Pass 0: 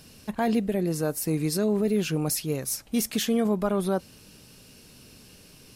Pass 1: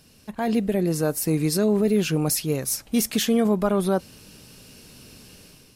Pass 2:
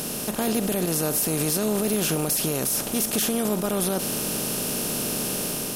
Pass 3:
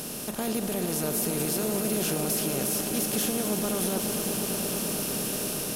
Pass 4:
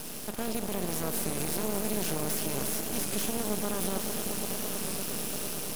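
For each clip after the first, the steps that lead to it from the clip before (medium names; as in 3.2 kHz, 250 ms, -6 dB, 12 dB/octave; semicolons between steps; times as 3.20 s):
level rider gain up to 8.5 dB; trim -4.5 dB
spectral levelling over time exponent 0.4; treble shelf 8.5 kHz +11 dB; peak limiter -10.5 dBFS, peak gain reduction 10.5 dB; trim -3.5 dB
echo with a slow build-up 112 ms, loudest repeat 5, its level -11 dB; trim -5.5 dB
half-wave rectifier; short-mantissa float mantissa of 2-bit; warped record 33 1/3 rpm, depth 100 cents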